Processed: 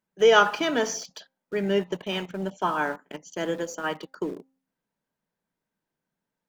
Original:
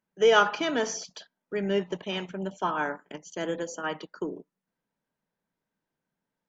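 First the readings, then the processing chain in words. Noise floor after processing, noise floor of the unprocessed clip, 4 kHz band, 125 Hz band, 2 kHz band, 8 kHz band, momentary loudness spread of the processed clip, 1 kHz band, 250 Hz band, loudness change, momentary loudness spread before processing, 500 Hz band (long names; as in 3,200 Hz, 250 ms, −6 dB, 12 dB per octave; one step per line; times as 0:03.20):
below −85 dBFS, below −85 dBFS, +2.5 dB, +2.5 dB, +2.5 dB, can't be measured, 16 LU, +2.5 dB, +2.5 dB, +2.5 dB, 18 LU, +2.5 dB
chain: hum removal 265.1 Hz, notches 3
in parallel at −9 dB: centre clipping without the shift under −36.5 dBFS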